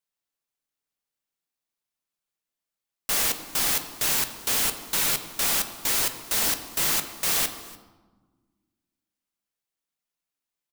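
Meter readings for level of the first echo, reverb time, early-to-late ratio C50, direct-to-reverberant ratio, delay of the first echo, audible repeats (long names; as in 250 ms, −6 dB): −21.0 dB, 1.3 s, 10.0 dB, 7.5 dB, 293 ms, 1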